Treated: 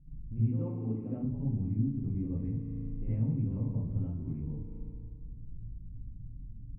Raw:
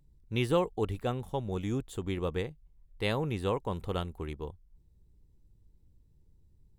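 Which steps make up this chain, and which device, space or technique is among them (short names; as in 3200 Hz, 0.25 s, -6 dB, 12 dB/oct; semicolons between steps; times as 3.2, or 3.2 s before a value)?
0.5–1.17 HPF 270 Hz 12 dB/oct; steep low-pass 2600 Hz 48 dB/oct; band shelf 810 Hz -15.5 dB 2.6 oct; spring tank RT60 1.7 s, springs 36 ms, chirp 45 ms, DRR 10 dB; television next door (compressor 4:1, threshold -51 dBFS, peak gain reduction 19.5 dB; LPF 480 Hz 12 dB/oct; reverb RT60 0.40 s, pre-delay 58 ms, DRR -10 dB); gain +7 dB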